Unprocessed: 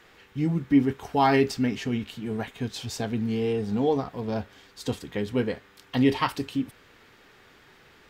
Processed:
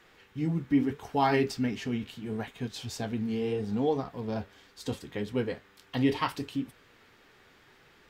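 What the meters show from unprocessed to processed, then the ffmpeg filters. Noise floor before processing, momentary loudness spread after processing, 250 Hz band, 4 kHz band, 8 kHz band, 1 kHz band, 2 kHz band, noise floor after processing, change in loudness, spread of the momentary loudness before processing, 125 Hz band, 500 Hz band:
-56 dBFS, 11 LU, -4.5 dB, -4.0 dB, -4.5 dB, -4.5 dB, -4.0 dB, -60 dBFS, -4.5 dB, 11 LU, -4.0 dB, -4.5 dB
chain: -af "flanger=delay=4.9:depth=9.3:regen=-65:speed=0.75:shape=triangular"

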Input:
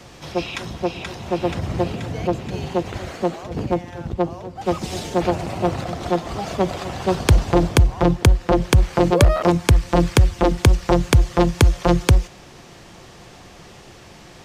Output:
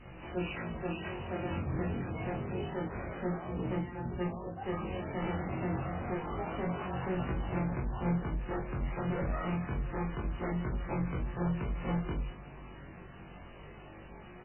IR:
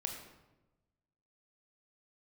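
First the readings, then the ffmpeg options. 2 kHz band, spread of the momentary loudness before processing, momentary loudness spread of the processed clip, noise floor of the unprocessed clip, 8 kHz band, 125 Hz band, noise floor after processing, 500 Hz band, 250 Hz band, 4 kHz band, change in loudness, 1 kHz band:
-14.0 dB, 10 LU, 15 LU, -44 dBFS, under -40 dB, -16.0 dB, -50 dBFS, -17.0 dB, -13.5 dB, -23.0 dB, -16.0 dB, -15.0 dB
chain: -filter_complex "[0:a]adynamicequalizer=threshold=0.02:dfrequency=580:dqfactor=2.9:tfrequency=580:tqfactor=2.9:attack=5:release=100:ratio=0.375:range=3:mode=cutabove:tftype=bell,aresample=8000,volume=21dB,asoftclip=hard,volume=-21dB,aresample=44100,flanger=delay=16:depth=5.5:speed=0.27,asoftclip=type=tanh:threshold=-25dB,asplit=2[a][b];[b]adelay=22,volume=-6dB[c];[a][c]amix=inputs=2:normalize=0,aecho=1:1:213|426|639:0.15|0.0419|0.0117[d];[1:a]atrim=start_sample=2205,atrim=end_sample=3969,asetrate=70560,aresample=44100[e];[d][e]afir=irnorm=-1:irlink=0,aeval=exprs='val(0)+0.002*(sin(2*PI*50*n/s)+sin(2*PI*2*50*n/s)/2+sin(2*PI*3*50*n/s)/3+sin(2*PI*4*50*n/s)/4+sin(2*PI*5*50*n/s)/5)':c=same" -ar 8000 -c:a libmp3lame -b:a 8k

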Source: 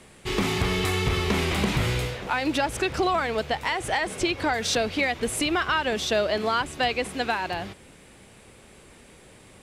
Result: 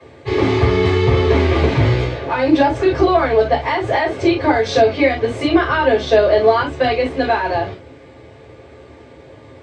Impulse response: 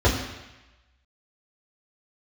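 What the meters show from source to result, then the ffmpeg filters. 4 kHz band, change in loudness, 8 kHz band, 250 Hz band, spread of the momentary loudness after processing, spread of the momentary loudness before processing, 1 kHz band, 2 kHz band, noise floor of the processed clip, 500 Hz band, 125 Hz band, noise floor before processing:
+1.5 dB, +9.5 dB, n/a, +11.0 dB, 5 LU, 4 LU, +8.5 dB, +5.0 dB, -42 dBFS, +13.0 dB, +11.0 dB, -51 dBFS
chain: -filter_complex "[0:a]acrossover=split=200 6000:gain=0.178 1 0.0794[a][b][c];[a][b][c]amix=inputs=3:normalize=0[d];[1:a]atrim=start_sample=2205,atrim=end_sample=3969,asetrate=52920,aresample=44100[e];[d][e]afir=irnorm=-1:irlink=0,volume=-8.5dB"

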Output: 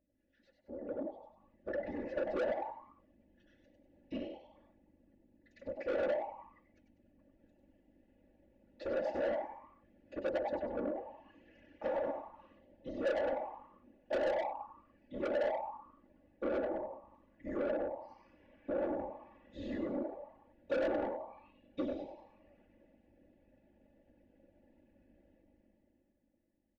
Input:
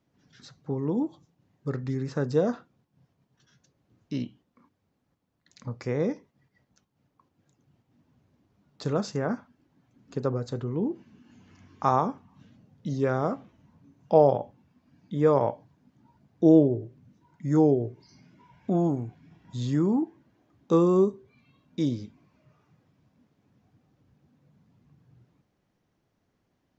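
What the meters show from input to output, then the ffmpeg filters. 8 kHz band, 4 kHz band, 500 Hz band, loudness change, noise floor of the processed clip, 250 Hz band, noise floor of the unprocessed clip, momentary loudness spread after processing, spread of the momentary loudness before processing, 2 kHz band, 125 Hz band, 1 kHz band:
n/a, -7.5 dB, -8.5 dB, -12.0 dB, -74 dBFS, -16.0 dB, -75 dBFS, 18 LU, 19 LU, -1.0 dB, -27.5 dB, -10.0 dB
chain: -filter_complex "[0:a]acompressor=threshold=-24dB:ratio=10,aeval=exprs='val(0)+0.00447*(sin(2*PI*50*n/s)+sin(2*PI*2*50*n/s)/2+sin(2*PI*3*50*n/s)/3+sin(2*PI*4*50*n/s)/4+sin(2*PI*5*50*n/s)/5)':c=same,asplit=3[a][b][c];[a]bandpass=f=530:t=q:w=8,volume=0dB[d];[b]bandpass=f=1.84k:t=q:w=8,volume=-6dB[e];[c]bandpass=f=2.48k:t=q:w=8,volume=-9dB[f];[d][e][f]amix=inputs=3:normalize=0,aemphasis=mode=reproduction:type=50fm,dynaudnorm=f=110:g=21:m=13.5dB,asplit=6[g][h][i][j][k][l];[h]adelay=97,afreqshift=120,volume=-6dB[m];[i]adelay=194,afreqshift=240,volume=-14.4dB[n];[j]adelay=291,afreqshift=360,volume=-22.8dB[o];[k]adelay=388,afreqshift=480,volume=-31.2dB[p];[l]adelay=485,afreqshift=600,volume=-39.6dB[q];[g][m][n][o][p][q]amix=inputs=6:normalize=0,afftfilt=real='hypot(re,im)*cos(2*PI*random(0))':imag='hypot(re,im)*sin(2*PI*random(1))':win_size=512:overlap=0.75,asoftclip=type=tanh:threshold=-32.5dB,aecho=1:1:3.5:0.75,adynamicequalizer=threshold=0.002:dfrequency=2200:dqfactor=0.7:tfrequency=2200:tqfactor=0.7:attack=5:release=100:ratio=0.375:range=2.5:mode=cutabove:tftype=highshelf"

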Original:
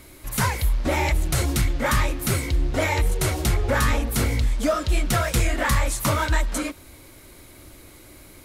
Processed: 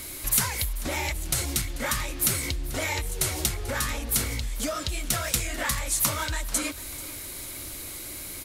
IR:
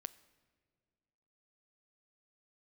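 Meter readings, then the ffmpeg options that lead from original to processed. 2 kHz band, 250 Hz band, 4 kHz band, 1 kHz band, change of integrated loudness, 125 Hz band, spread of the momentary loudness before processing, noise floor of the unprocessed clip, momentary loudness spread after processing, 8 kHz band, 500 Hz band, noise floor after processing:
-5.0 dB, -8.0 dB, 0.0 dB, -7.5 dB, -4.0 dB, -9.5 dB, 3 LU, -47 dBFS, 11 LU, +3.5 dB, -9.0 dB, -38 dBFS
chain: -filter_complex "[0:a]acompressor=threshold=-30dB:ratio=12,highshelf=f=2.5k:g=12,asplit=2[a][b];[b]aecho=0:1:439|878|1317|1756:0.126|0.0541|0.0233|0.01[c];[a][c]amix=inputs=2:normalize=0,volume=2dB"

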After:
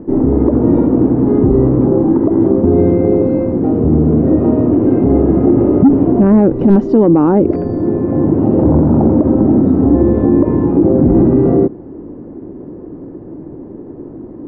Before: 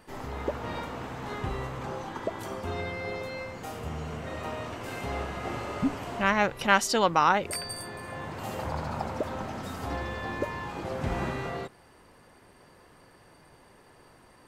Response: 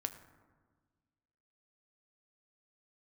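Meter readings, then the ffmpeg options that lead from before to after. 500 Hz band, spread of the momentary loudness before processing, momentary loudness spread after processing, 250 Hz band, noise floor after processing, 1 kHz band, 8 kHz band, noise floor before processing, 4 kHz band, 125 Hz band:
+20.5 dB, 13 LU, 21 LU, +27.5 dB, -31 dBFS, +4.5 dB, under -25 dB, -57 dBFS, under -15 dB, +22.5 dB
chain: -af "lowshelf=f=170:g=-6,aresample=16000,aeval=exprs='(mod(2.66*val(0)+1,2)-1)/2.66':c=same,aresample=44100,lowpass=f=310:t=q:w=3.5,asoftclip=type=tanh:threshold=-15.5dB,alimiter=level_in=27.5dB:limit=-1dB:release=50:level=0:latency=1,volume=-1dB"

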